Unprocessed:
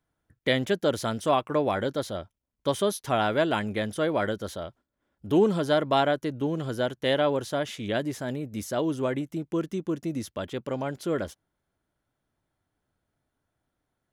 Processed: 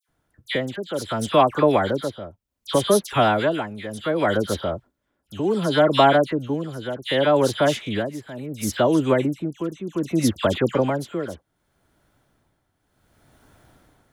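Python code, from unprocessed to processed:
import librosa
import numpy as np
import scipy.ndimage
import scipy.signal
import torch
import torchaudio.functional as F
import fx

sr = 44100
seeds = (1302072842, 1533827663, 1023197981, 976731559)

y = fx.recorder_agc(x, sr, target_db=-15.0, rise_db_per_s=6.0, max_gain_db=30)
y = y * (1.0 - 0.78 / 2.0 + 0.78 / 2.0 * np.cos(2.0 * np.pi * 0.67 * (np.arange(len(y)) / sr)))
y = fx.dispersion(y, sr, late='lows', ms=84.0, hz=1900.0)
y = y * 10.0 ** (8.0 / 20.0)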